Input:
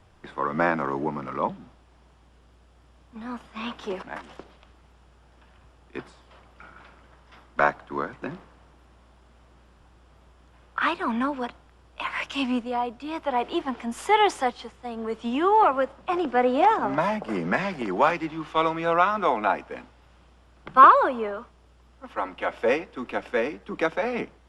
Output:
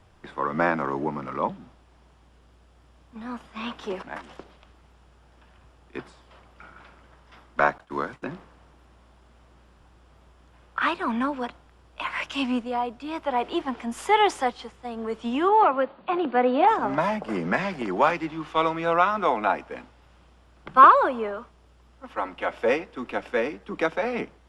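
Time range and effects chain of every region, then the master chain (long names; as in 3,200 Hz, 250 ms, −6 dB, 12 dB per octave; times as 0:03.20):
0:07.78–0:08.24: downward expander −43 dBFS + high-shelf EQ 3,700 Hz +7.5 dB
0:15.49–0:16.68: Chebyshev low-pass filter 4,600 Hz, order 8 + low shelf with overshoot 130 Hz −9.5 dB, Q 1.5
whole clip: no processing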